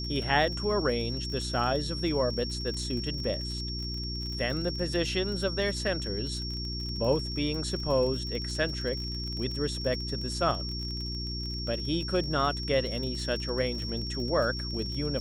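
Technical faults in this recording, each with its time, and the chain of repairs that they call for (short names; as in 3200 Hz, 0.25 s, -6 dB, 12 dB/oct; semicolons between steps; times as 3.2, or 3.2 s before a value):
crackle 37/s -35 dBFS
hum 60 Hz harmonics 6 -36 dBFS
tone 5500 Hz -36 dBFS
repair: de-click; de-hum 60 Hz, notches 6; notch 5500 Hz, Q 30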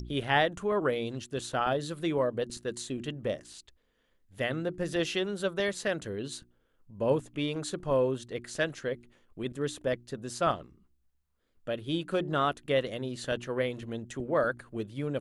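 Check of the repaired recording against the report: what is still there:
none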